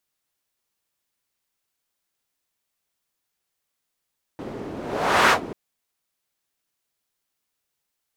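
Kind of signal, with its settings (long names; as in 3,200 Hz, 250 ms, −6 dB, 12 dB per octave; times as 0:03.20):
pass-by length 1.14 s, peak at 0:00.92, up 0.59 s, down 0.11 s, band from 340 Hz, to 1,300 Hz, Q 1.2, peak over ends 18.5 dB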